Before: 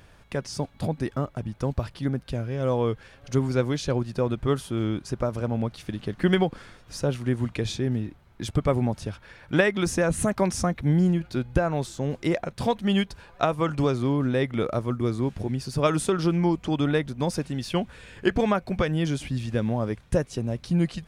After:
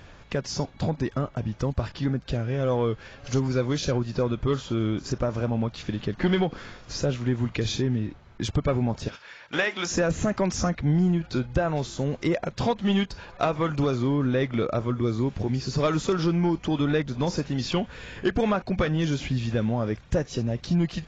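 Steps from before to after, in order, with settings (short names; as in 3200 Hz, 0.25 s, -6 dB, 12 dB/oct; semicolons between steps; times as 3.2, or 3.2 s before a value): 9.08–9.94 HPF 1300 Hz 6 dB/oct; in parallel at +2 dB: compressor 16:1, threshold -29 dBFS, peak gain reduction 14.5 dB; on the sum: soft clip -11.5 dBFS, distortion -19 dB; gain -2 dB; AAC 24 kbps 16000 Hz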